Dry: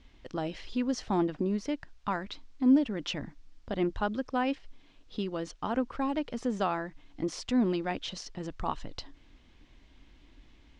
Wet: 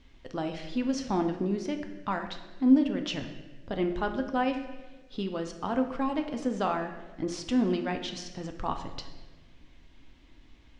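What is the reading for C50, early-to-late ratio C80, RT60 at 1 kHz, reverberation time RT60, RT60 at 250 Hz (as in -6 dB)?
8.0 dB, 10.0 dB, 1.1 s, 1.3 s, 1.5 s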